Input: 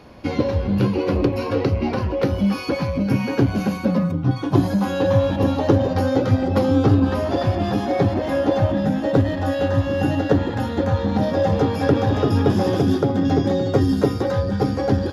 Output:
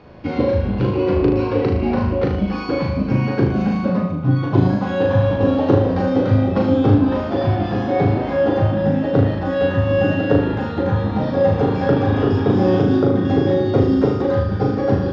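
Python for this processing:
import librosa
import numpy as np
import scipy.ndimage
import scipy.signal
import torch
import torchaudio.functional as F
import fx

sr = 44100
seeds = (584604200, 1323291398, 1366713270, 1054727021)

y = fx.air_absorb(x, sr, metres=190.0)
y = fx.room_flutter(y, sr, wall_m=6.5, rt60_s=0.67)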